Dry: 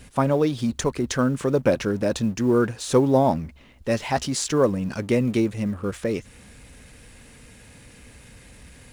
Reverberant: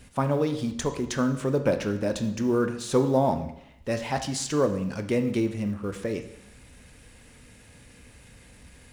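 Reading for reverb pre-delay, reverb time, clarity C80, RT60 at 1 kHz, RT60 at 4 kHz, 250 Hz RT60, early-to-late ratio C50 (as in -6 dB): 17 ms, 0.75 s, 13.0 dB, 0.80 s, 0.75 s, 0.70 s, 11.0 dB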